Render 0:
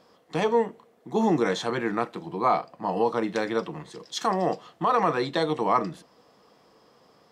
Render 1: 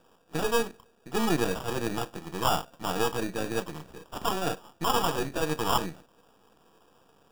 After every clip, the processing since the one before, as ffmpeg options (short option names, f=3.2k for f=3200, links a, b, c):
-af "aeval=exprs='if(lt(val(0),0),0.251*val(0),val(0))':c=same,bandreject=f=590:w=14,acrusher=samples=21:mix=1:aa=0.000001"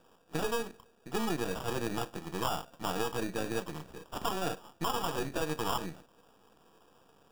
-af "acompressor=threshold=-26dB:ratio=6,volume=-1.5dB"